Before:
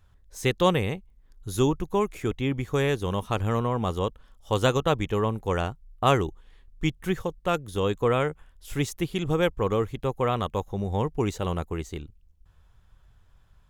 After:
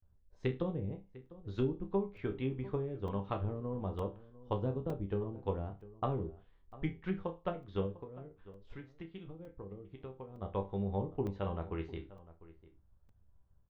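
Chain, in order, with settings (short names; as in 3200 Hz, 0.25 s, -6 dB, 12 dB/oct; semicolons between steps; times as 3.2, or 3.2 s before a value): low-pass opened by the level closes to 560 Hz, open at -20 dBFS; gate with hold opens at -55 dBFS; treble ducked by the level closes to 350 Hz, closed at -20.5 dBFS; bell 4300 Hz +13.5 dB 1.6 oct; transient shaper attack +3 dB, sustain -2 dB; 7.86–10.42 compressor, threshold -34 dBFS, peak gain reduction 14.5 dB; resonator bank C2 major, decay 0.27 s; outdoor echo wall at 120 m, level -18 dB; crackling interface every 0.91 s, samples 128, zero, from 0.35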